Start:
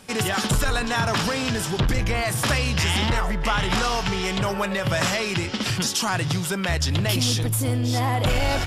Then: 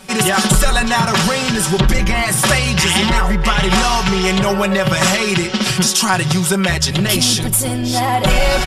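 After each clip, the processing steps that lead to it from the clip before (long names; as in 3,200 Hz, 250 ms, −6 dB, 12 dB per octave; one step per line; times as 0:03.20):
comb filter 5.3 ms, depth 95%
dynamic equaliser 9,300 Hz, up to +5 dB, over −38 dBFS, Q 1.6
level +5.5 dB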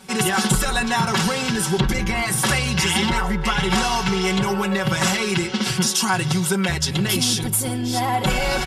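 notch comb filter 610 Hz
level −4.5 dB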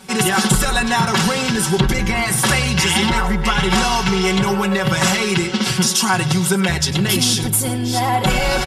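slap from a distant wall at 17 metres, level −15 dB
level +3.5 dB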